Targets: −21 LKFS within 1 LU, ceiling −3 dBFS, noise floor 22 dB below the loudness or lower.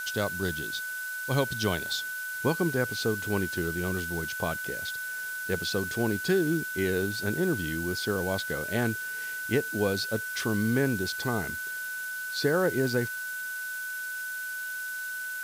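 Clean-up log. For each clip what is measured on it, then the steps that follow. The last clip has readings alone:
interfering tone 1,500 Hz; level of the tone −33 dBFS; background noise floor −35 dBFS; target noise floor −52 dBFS; integrated loudness −29.5 LKFS; sample peak −13.0 dBFS; target loudness −21.0 LKFS
→ notch filter 1,500 Hz, Q 30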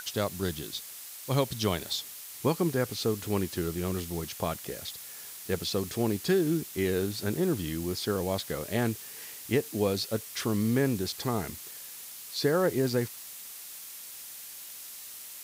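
interfering tone none found; background noise floor −44 dBFS; target noise floor −54 dBFS
→ broadband denoise 10 dB, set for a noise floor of −44 dBFS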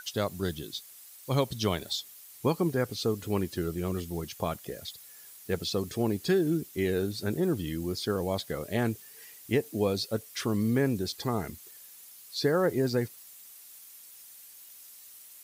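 background noise floor −51 dBFS; target noise floor −53 dBFS
→ broadband denoise 6 dB, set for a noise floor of −51 dBFS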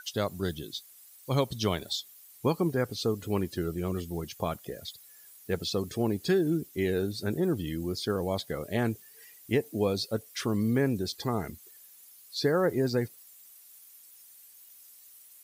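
background noise floor −54 dBFS; integrated loudness −30.5 LKFS; sample peak −14.0 dBFS; target loudness −21.0 LKFS
→ level +9.5 dB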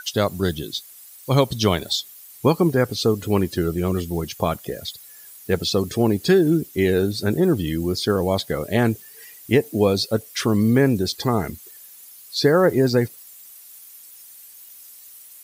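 integrated loudness −21.0 LKFS; sample peak −4.5 dBFS; background noise floor −45 dBFS

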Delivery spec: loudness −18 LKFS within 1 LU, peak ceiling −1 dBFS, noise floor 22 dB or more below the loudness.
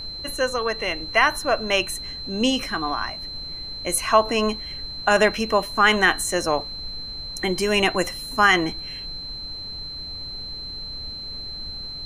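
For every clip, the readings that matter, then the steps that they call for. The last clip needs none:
interfering tone 4,100 Hz; level of the tone −32 dBFS; background noise floor −34 dBFS; target noise floor −45 dBFS; integrated loudness −23.0 LKFS; sample peak −3.5 dBFS; target loudness −18.0 LKFS
→ notch filter 4,100 Hz, Q 30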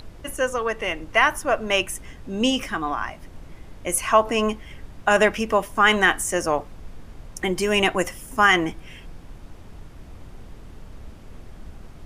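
interfering tone none found; background noise floor −43 dBFS; target noise floor −44 dBFS
→ noise reduction from a noise print 6 dB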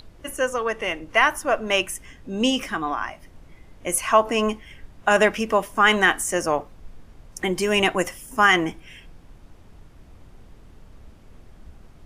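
background noise floor −49 dBFS; integrated loudness −21.5 LKFS; sample peak −3.5 dBFS; target loudness −18.0 LKFS
→ level +3.5 dB
brickwall limiter −1 dBFS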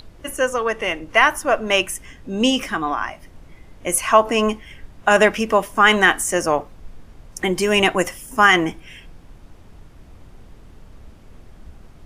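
integrated loudness −18.0 LKFS; sample peak −1.0 dBFS; background noise floor −45 dBFS

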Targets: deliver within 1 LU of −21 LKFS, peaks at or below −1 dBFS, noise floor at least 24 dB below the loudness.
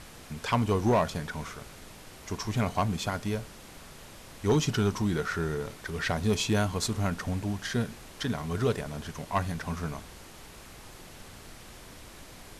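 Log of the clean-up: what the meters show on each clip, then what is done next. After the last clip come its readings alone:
share of clipped samples 0.4%; peaks flattened at −18.0 dBFS; background noise floor −49 dBFS; target noise floor −55 dBFS; integrated loudness −30.5 LKFS; sample peak −18.0 dBFS; target loudness −21.0 LKFS
→ clipped peaks rebuilt −18 dBFS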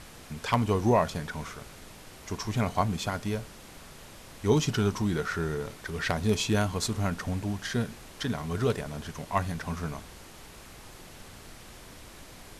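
share of clipped samples 0.0%; background noise floor −49 dBFS; target noise floor −54 dBFS
→ noise reduction from a noise print 6 dB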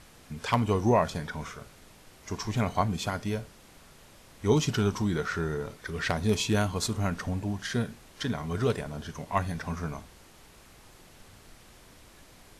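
background noise floor −55 dBFS; integrated loudness −30.0 LKFS; sample peak −9.0 dBFS; target loudness −21.0 LKFS
→ level +9 dB
brickwall limiter −1 dBFS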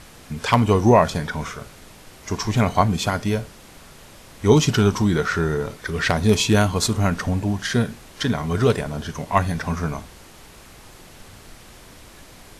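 integrated loudness −21.0 LKFS; sample peak −1.0 dBFS; background noise floor −46 dBFS

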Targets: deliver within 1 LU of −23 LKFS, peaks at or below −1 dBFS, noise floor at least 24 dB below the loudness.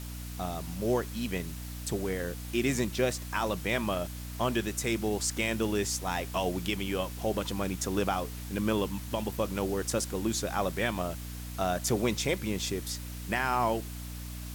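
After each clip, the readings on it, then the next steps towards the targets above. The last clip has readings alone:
mains hum 60 Hz; hum harmonics up to 300 Hz; level of the hum −38 dBFS; background noise floor −40 dBFS; target noise floor −56 dBFS; integrated loudness −31.5 LKFS; sample peak −15.5 dBFS; target loudness −23.0 LKFS
→ hum removal 60 Hz, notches 5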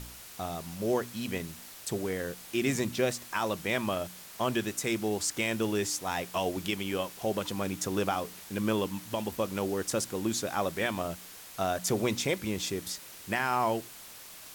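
mains hum none found; background noise floor −48 dBFS; target noise floor −56 dBFS
→ noise reduction from a noise print 8 dB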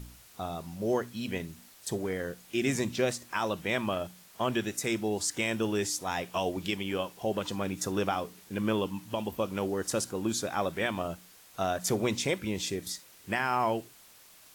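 background noise floor −56 dBFS; integrated loudness −32.0 LKFS; sample peak −16.0 dBFS; target loudness −23.0 LKFS
→ level +9 dB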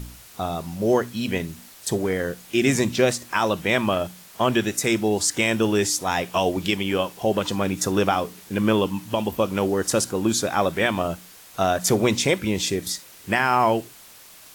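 integrated loudness −23.0 LKFS; sample peak −7.0 dBFS; background noise floor −47 dBFS

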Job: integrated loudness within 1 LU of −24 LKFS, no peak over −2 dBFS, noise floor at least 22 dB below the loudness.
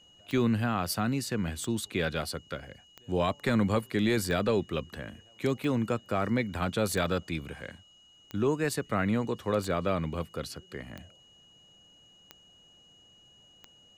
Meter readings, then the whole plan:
number of clicks 11; interfering tone 2,900 Hz; level of the tone −57 dBFS; integrated loudness −30.0 LKFS; sample peak −17.0 dBFS; target loudness −24.0 LKFS
→ click removal
notch filter 2,900 Hz, Q 30
level +6 dB

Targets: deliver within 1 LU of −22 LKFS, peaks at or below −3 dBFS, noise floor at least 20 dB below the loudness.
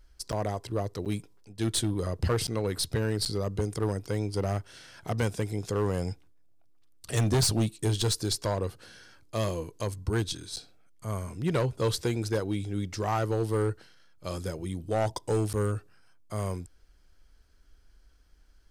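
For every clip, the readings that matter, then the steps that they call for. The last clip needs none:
share of clipped samples 1.1%; peaks flattened at −20.5 dBFS; number of dropouts 6; longest dropout 8.3 ms; integrated loudness −30.5 LKFS; sample peak −20.5 dBFS; target loudness −22.0 LKFS
→ clipped peaks rebuilt −20.5 dBFS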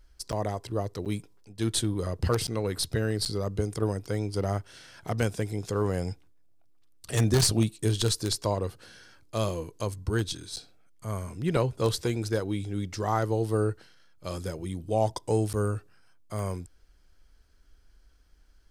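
share of clipped samples 0.0%; number of dropouts 6; longest dropout 8.3 ms
→ repair the gap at 0:00.32/0:01.05/0:02.47/0:03.25/0:10.56/0:15.53, 8.3 ms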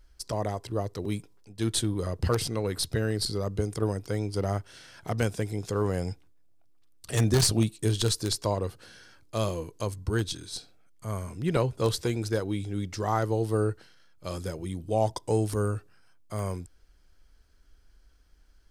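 number of dropouts 0; integrated loudness −29.5 LKFS; sample peak −11.5 dBFS; target loudness −22.0 LKFS
→ level +7.5 dB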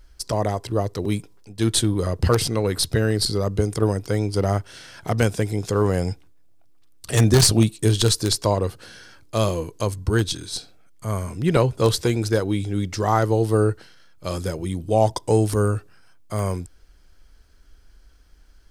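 integrated loudness −22.0 LKFS; sample peak −4.0 dBFS; background noise floor −52 dBFS

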